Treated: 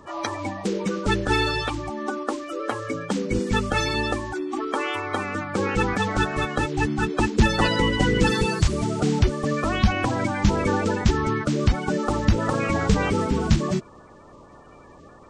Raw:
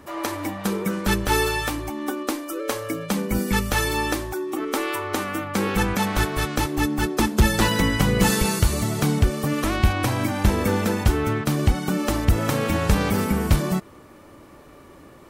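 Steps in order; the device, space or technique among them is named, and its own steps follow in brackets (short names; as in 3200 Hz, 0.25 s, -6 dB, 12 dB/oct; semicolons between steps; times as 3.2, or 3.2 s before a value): clip after many re-uploads (LPF 6800 Hz 24 dB/oct; bin magnitudes rounded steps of 30 dB)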